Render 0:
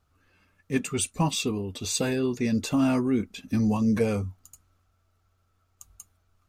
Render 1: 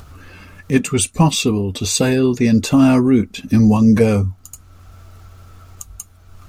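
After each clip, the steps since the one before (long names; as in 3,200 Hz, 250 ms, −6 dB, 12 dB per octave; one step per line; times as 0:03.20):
in parallel at −2 dB: upward compression, threshold −28 dBFS
on the sum: low-shelf EQ 220 Hz +4.5 dB
level +4.5 dB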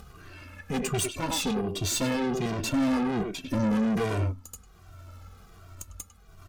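far-end echo of a speakerphone 100 ms, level −6 dB
tube saturation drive 22 dB, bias 0.7
barber-pole flanger 2 ms −1.3 Hz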